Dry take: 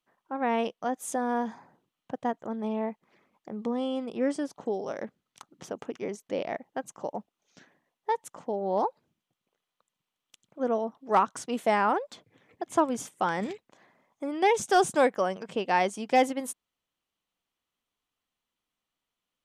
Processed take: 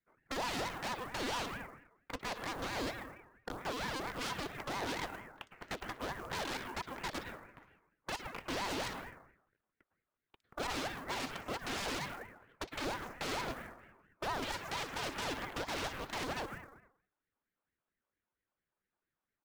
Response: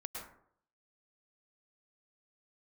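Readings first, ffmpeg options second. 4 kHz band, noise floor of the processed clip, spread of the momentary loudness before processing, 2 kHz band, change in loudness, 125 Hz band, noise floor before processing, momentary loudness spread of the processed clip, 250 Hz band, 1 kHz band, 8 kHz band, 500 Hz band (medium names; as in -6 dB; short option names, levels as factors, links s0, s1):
+2.0 dB, under -85 dBFS, 14 LU, -4.0 dB, -10.5 dB, -1.5 dB, under -85 dBFS, 13 LU, -12.5 dB, -12.0 dB, -6.0 dB, -14.0 dB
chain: -filter_complex "[0:a]aecho=1:1:3.4:0.38,aresample=16000,aeval=exprs='0.0473*(abs(mod(val(0)/0.0473+3,4)-2)-1)':c=same,aresample=44100,equalizer=f=720:t=o:w=1.9:g=14,aeval=exprs='0.237*(cos(1*acos(clip(val(0)/0.237,-1,1)))-cos(1*PI/2))+0.0531*(cos(3*acos(clip(val(0)/0.237,-1,1)))-cos(3*PI/2))+0.106*(cos(6*acos(clip(val(0)/0.237,-1,1)))-cos(6*PI/2))+0.0237*(cos(7*acos(clip(val(0)/0.237,-1,1)))-cos(7*PI/2))':c=same,acrossover=split=260 2900:gain=0.0794 1 0.0794[s0][s1][s2];[s0][s1][s2]amix=inputs=3:normalize=0,acrossover=split=4700[s3][s4];[s4]adelay=60[s5];[s3][s5]amix=inputs=2:normalize=0,asplit=2[s6][s7];[1:a]atrim=start_sample=2205[s8];[s7][s8]afir=irnorm=-1:irlink=0,volume=0.562[s9];[s6][s9]amix=inputs=2:normalize=0,volume=15.8,asoftclip=hard,volume=0.0631,acrusher=bits=6:mode=log:mix=0:aa=0.000001,acrossover=split=240|3000[s10][s11][s12];[s11]acompressor=threshold=0.00794:ratio=2.5[s13];[s10][s13][s12]amix=inputs=3:normalize=0,flanger=delay=1:depth=4.7:regen=76:speed=0.28:shape=sinusoidal,aeval=exprs='val(0)*sin(2*PI*630*n/s+630*0.6/4.4*sin(2*PI*4.4*n/s))':c=same,volume=1.33"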